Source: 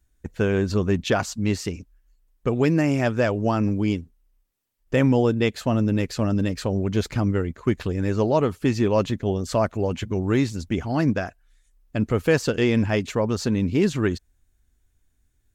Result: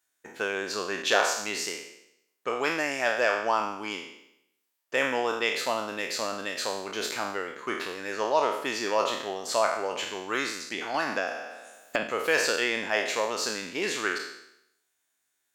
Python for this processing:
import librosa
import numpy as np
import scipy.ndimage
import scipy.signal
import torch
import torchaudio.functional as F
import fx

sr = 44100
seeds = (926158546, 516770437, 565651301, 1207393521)

y = fx.spec_trails(x, sr, decay_s=0.78)
y = scipy.signal.sosfilt(scipy.signal.butter(2, 730.0, 'highpass', fs=sr, output='sos'), y)
y = fx.band_squash(y, sr, depth_pct=100, at=(10.94, 12.03))